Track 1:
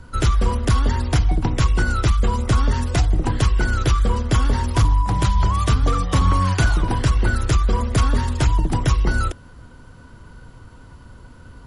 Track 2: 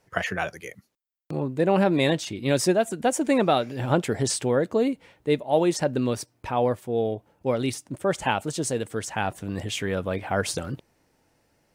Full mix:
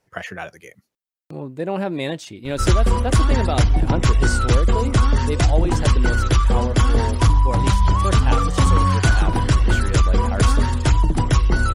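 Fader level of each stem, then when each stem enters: +1.5, −3.5 decibels; 2.45, 0.00 seconds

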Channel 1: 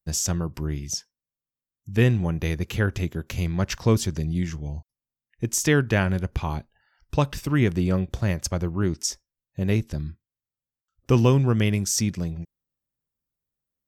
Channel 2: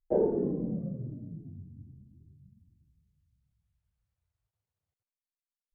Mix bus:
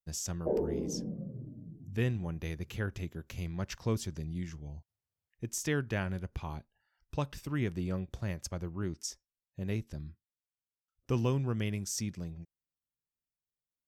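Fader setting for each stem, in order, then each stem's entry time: −12.0, −5.0 decibels; 0.00, 0.35 seconds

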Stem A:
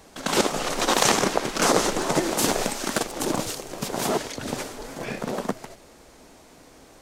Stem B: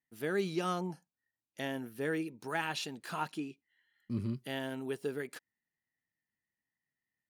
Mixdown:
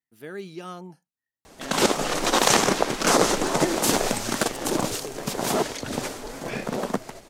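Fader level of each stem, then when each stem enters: +1.0, −3.5 decibels; 1.45, 0.00 seconds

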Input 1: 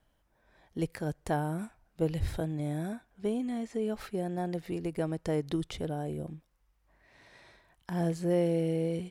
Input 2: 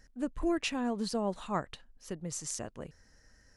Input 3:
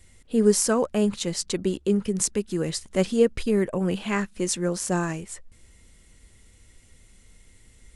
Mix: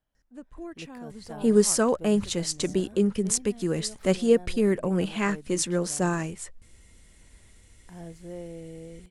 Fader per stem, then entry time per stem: −12.0, −9.5, −0.5 decibels; 0.00, 0.15, 1.10 seconds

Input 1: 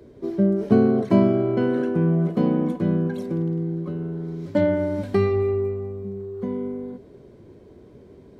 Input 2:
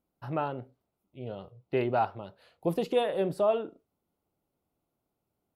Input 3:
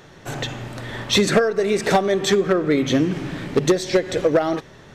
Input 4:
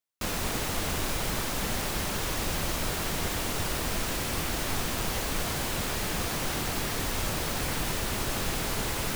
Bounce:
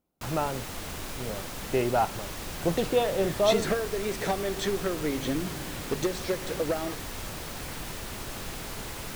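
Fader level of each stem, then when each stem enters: muted, +2.0 dB, −11.5 dB, −7.0 dB; muted, 0.00 s, 2.35 s, 0.00 s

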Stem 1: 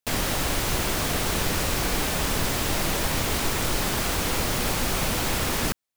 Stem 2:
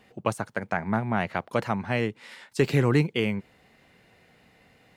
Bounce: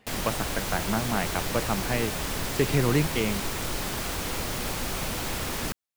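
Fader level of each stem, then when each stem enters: −5.5, −2.0 decibels; 0.00, 0.00 seconds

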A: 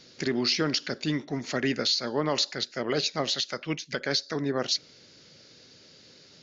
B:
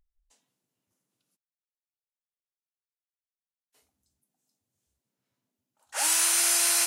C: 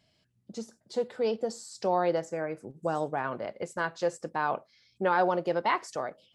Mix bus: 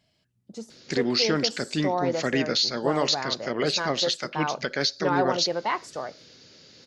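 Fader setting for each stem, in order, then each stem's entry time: +2.0, −2.0, 0.0 decibels; 0.70, 1.05, 0.00 seconds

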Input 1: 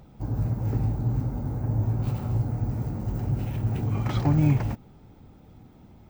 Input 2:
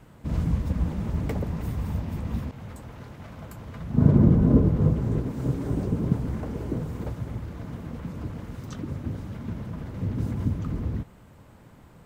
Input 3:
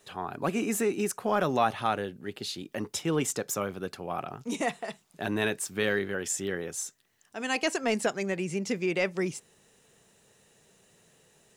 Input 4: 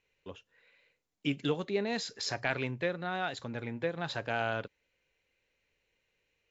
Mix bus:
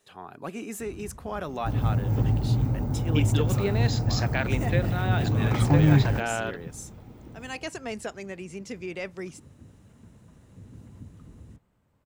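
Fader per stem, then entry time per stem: +2.0, −18.5, −7.0, +3.0 decibels; 1.45, 0.55, 0.00, 1.90 seconds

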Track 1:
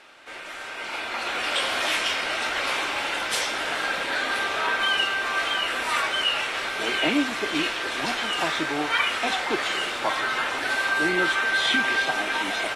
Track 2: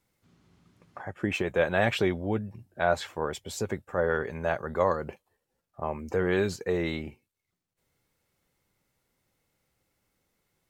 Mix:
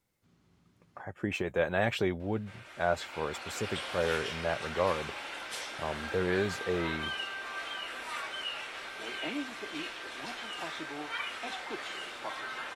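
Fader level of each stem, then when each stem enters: −13.5, −4.0 decibels; 2.20, 0.00 seconds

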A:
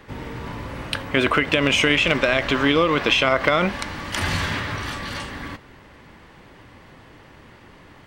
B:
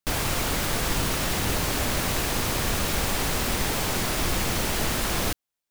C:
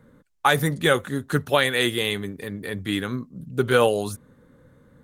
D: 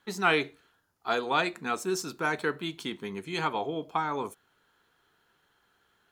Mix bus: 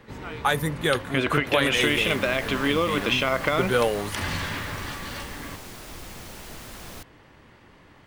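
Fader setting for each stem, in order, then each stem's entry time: −5.5, −15.0, −4.0, −16.0 decibels; 0.00, 1.70, 0.00, 0.00 seconds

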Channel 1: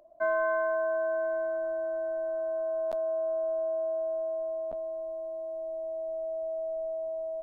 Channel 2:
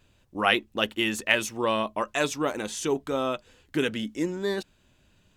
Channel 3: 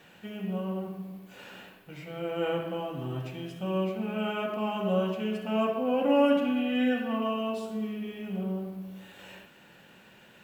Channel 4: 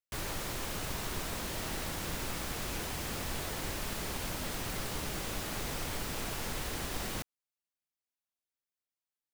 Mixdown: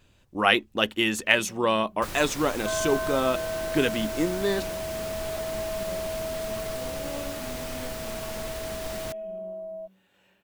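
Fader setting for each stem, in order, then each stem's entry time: −2.5, +2.0, −16.5, +0.5 decibels; 2.45, 0.00, 0.95, 1.90 seconds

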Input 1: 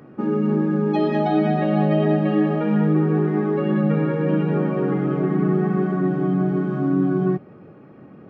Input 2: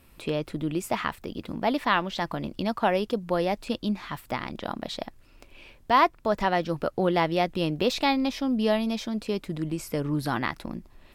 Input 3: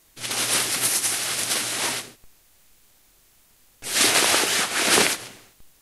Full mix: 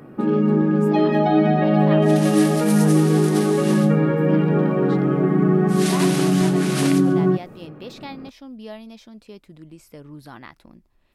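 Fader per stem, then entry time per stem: +2.5, −12.5, −10.5 decibels; 0.00, 0.00, 1.85 seconds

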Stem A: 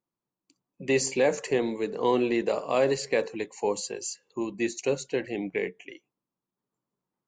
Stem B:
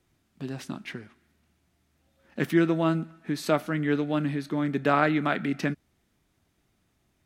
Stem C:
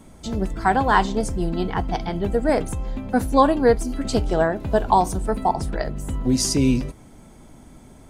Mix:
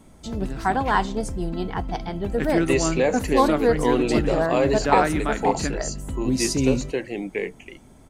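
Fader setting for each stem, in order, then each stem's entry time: +2.0, −0.5, −3.5 decibels; 1.80, 0.00, 0.00 seconds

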